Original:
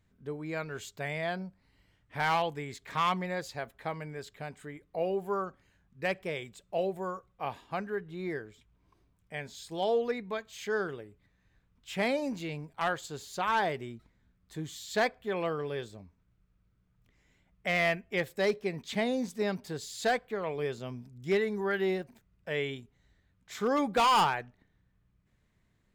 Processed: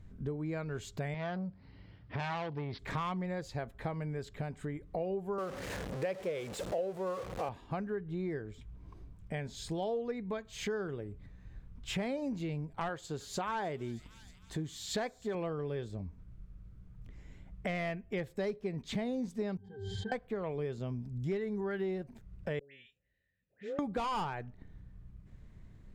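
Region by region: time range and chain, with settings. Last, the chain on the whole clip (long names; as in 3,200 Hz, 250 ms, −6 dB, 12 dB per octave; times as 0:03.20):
0:01.14–0:02.79: high-pass filter 81 Hz + bad sample-rate conversion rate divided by 4×, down none, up filtered + saturating transformer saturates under 2,100 Hz
0:05.38–0:07.49: converter with a step at zero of −37 dBFS + high-pass filter 390 Hz 6 dB per octave + parametric band 510 Hz +9 dB 0.46 octaves
0:12.89–0:15.35: low-shelf EQ 140 Hz −8.5 dB + delay with a high-pass on its return 314 ms, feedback 50%, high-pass 5,200 Hz, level −10 dB
0:19.57–0:20.12: resonances in every octave G, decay 0.26 s + background raised ahead of every attack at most 33 dB per second
0:22.59–0:23.79: formant filter e + parametric band 490 Hz −14 dB 2.3 octaves + all-pass dispersion highs, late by 141 ms, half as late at 1,200 Hz
whole clip: spectral tilt −3 dB per octave; downward compressor 4 to 1, threshold −44 dBFS; parametric band 7,500 Hz +4.5 dB 1.8 octaves; level +7.5 dB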